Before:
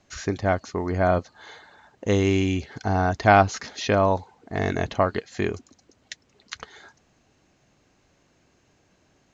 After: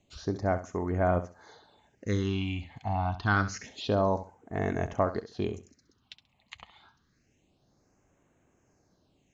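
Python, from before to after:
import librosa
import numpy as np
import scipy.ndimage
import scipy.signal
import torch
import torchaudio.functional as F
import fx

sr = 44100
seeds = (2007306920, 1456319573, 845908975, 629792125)

p1 = fx.phaser_stages(x, sr, stages=6, low_hz=390.0, high_hz=4600.0, hz=0.27, feedback_pct=20)
p2 = p1 + fx.echo_feedback(p1, sr, ms=67, feedback_pct=22, wet_db=-13.0, dry=0)
y = p2 * librosa.db_to_amplitude(-5.5)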